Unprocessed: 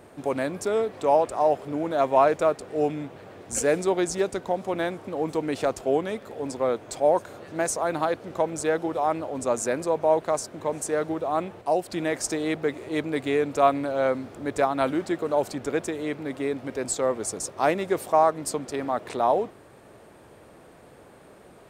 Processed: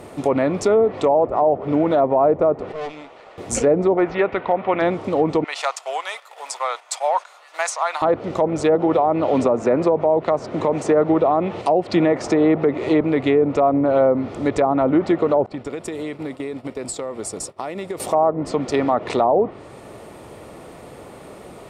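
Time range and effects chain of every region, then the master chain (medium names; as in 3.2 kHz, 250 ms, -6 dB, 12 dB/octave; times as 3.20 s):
2.72–3.38 s: high-pass 650 Hz + distance through air 82 m + valve stage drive 36 dB, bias 0.8
3.97–4.82 s: low-pass 2.6 kHz 24 dB/octave + tilt shelf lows -7.5 dB, about 700 Hz + hard clipper -15 dBFS
5.44–8.02 s: gate -39 dBFS, range -8 dB + high-pass 870 Hz 24 dB/octave
8.75–13.01 s: high-pass 82 Hz + treble shelf 11 kHz -10 dB + three bands compressed up and down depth 70%
15.46–18.00 s: band-stop 6.3 kHz, Q 6.5 + expander -32 dBFS + compression 10:1, threshold -35 dBFS
whole clip: band-stop 1.6 kHz, Q 6.7; low-pass that closes with the level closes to 780 Hz, closed at -19 dBFS; loudness maximiser +18 dB; trim -7 dB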